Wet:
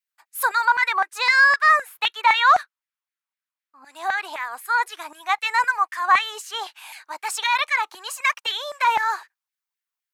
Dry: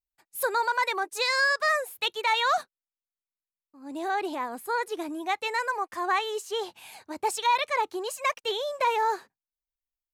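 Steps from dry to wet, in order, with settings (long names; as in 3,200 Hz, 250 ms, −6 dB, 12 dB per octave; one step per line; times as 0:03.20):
0:00.65–0:03.85: bass and treble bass +15 dB, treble −6 dB
auto-filter high-pass saw down 3.9 Hz 870–2,000 Hz
level +4.5 dB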